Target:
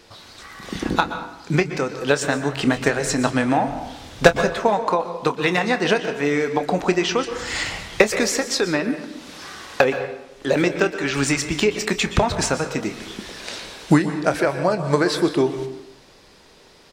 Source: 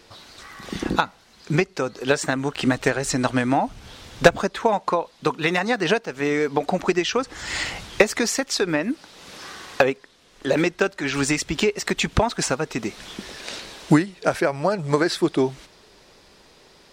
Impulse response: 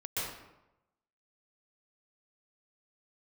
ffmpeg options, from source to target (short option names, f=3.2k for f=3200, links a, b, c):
-filter_complex "[0:a]asplit=2[a][b];[b]adelay=28,volume=-13dB[c];[a][c]amix=inputs=2:normalize=0,asplit=2[d][e];[1:a]atrim=start_sample=2205[f];[e][f]afir=irnorm=-1:irlink=0,volume=-12.5dB[g];[d][g]amix=inputs=2:normalize=0"